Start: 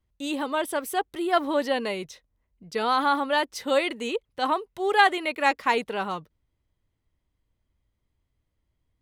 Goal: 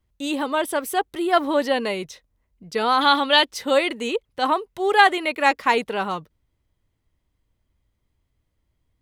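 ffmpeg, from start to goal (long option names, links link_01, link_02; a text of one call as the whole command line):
ffmpeg -i in.wav -filter_complex "[0:a]asettb=1/sr,asplit=3[link_01][link_02][link_03];[link_01]atrim=end=3.014[link_04];[link_02]atrim=start=3.01:end=3.51,asetpts=PTS-STARTPTS,afade=type=in:duration=0.004:curve=qsin,afade=type=out:start_time=0.496:duration=0.004:curve=qsin,equalizer=frequency=3500:width=1.2:gain=12.5[link_05];[link_03]atrim=start=3.506[link_06];[link_04][link_05]acrossfade=duration=0.004:curve1=hsin:curve2=qsin[link_07];[link_07][link_06]acrossfade=duration=0.004:curve1=qsin:curve2=hsin,volume=4dB" out.wav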